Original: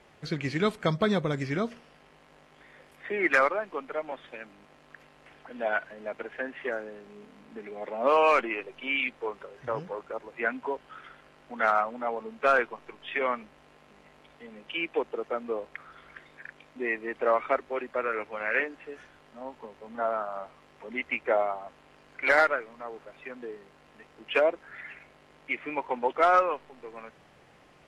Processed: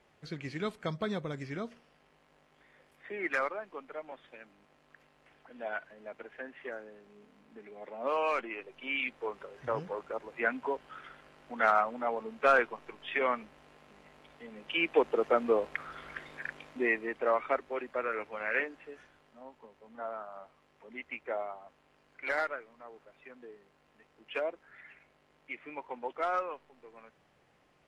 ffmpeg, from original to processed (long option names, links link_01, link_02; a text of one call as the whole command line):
ffmpeg -i in.wav -af "volume=5dB,afade=type=in:start_time=8.46:duration=1.21:silence=0.421697,afade=type=in:start_time=14.53:duration=0.72:silence=0.473151,afade=type=out:start_time=16.48:duration=0.72:silence=0.354813,afade=type=out:start_time=18.58:duration=0.93:silence=0.473151" out.wav